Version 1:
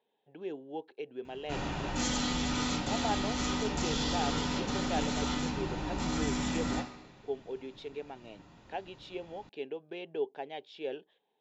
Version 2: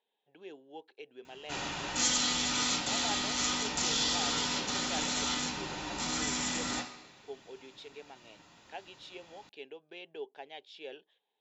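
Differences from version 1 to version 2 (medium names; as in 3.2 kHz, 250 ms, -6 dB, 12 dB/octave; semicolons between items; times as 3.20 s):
speech -5.0 dB; master: add tilt EQ +3 dB/octave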